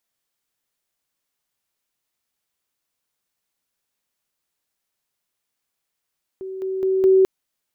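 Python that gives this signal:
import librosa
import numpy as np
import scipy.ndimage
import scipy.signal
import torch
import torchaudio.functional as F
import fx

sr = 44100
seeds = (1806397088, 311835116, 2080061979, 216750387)

y = fx.level_ladder(sr, hz=380.0, from_db=-28.5, step_db=6.0, steps=4, dwell_s=0.21, gap_s=0.0)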